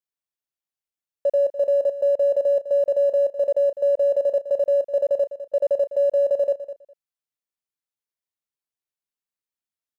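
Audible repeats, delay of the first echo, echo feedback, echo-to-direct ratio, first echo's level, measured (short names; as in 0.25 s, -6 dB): 2, 0.204 s, 16%, -13.0 dB, -13.0 dB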